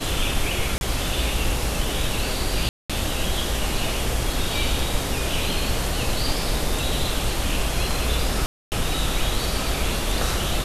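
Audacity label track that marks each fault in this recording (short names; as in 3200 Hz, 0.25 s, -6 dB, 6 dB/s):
0.780000	0.810000	gap 31 ms
2.690000	2.900000	gap 0.206 s
8.460000	8.720000	gap 0.259 s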